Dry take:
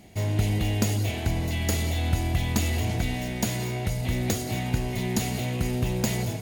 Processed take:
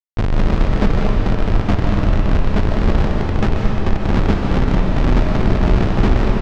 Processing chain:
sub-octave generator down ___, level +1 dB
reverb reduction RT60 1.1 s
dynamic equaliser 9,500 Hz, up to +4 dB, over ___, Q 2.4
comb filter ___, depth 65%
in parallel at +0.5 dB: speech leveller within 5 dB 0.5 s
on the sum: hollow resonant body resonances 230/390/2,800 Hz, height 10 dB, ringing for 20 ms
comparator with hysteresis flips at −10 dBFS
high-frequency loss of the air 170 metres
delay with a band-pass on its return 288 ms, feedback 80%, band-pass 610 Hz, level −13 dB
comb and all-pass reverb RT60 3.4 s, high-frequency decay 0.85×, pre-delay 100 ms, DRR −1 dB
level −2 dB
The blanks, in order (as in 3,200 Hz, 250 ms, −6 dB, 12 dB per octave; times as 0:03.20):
2 octaves, −53 dBFS, 0.9 ms